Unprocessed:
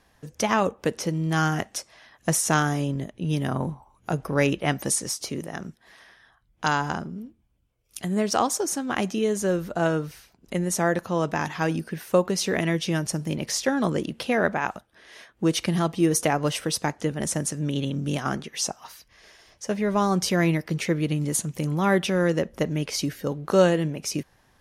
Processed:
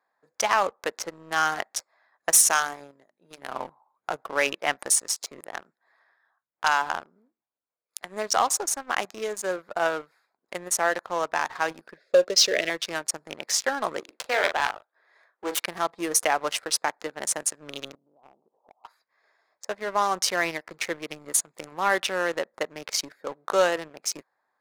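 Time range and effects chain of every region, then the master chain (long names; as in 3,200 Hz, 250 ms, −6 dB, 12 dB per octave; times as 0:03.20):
0:02.30–0:03.53: high-shelf EQ 4,800 Hz +8 dB + mains-hum notches 50/100/150/200/250/300/350 Hz + expander for the loud parts, over −35 dBFS
0:11.97–0:12.70: drawn EQ curve 240 Hz 0 dB, 600 Hz +8 dB, 870 Hz −21 dB, 2,000 Hz +1 dB, 5,000 Hz +10 dB, 13,000 Hz −13 dB + one half of a high-frequency compander decoder only
0:14.00–0:15.60: phase distortion by the signal itself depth 0.19 ms + high-pass filter 300 Hz 24 dB per octave + double-tracking delay 41 ms −8 dB
0:17.95–0:18.85: Butterworth low-pass 930 Hz 48 dB per octave + downward compressor 8 to 1, threshold −39 dBFS
whole clip: adaptive Wiener filter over 15 samples; high-pass filter 780 Hz 12 dB per octave; leveller curve on the samples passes 2; level −2.5 dB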